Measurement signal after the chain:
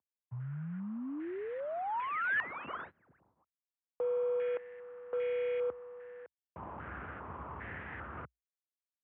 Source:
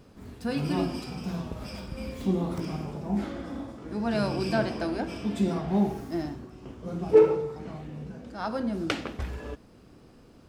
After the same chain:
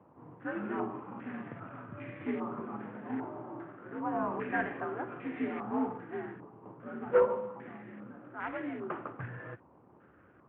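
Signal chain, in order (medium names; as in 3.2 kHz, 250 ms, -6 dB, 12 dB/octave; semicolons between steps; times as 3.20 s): CVSD coder 16 kbps; frequency shift +58 Hz; step-sequenced low-pass 2.5 Hz 980–2000 Hz; trim -8.5 dB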